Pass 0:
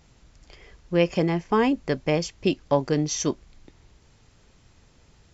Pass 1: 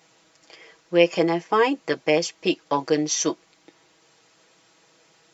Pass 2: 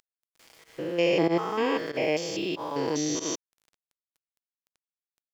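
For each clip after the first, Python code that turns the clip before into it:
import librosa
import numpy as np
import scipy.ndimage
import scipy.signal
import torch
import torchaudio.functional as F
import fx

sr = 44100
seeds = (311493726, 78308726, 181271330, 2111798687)

y1 = scipy.signal.sosfilt(scipy.signal.butter(2, 370.0, 'highpass', fs=sr, output='sos'), x)
y1 = y1 + 0.76 * np.pad(y1, (int(6.2 * sr / 1000.0), 0))[:len(y1)]
y1 = F.gain(torch.from_numpy(y1), 2.5).numpy()
y2 = fx.spec_steps(y1, sr, hold_ms=200)
y2 = np.where(np.abs(y2) >= 10.0 ** (-49.0 / 20.0), y2, 0.0)
y2 = fx.volume_shaper(y2, sr, bpm=94, per_beat=1, depth_db=-18, release_ms=83.0, shape='fast start')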